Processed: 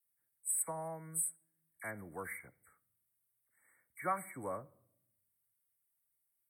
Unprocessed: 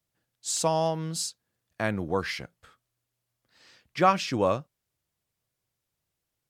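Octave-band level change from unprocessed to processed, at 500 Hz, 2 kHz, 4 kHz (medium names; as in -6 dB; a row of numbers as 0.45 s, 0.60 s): -17.0 dB, -11.5 dB, under -40 dB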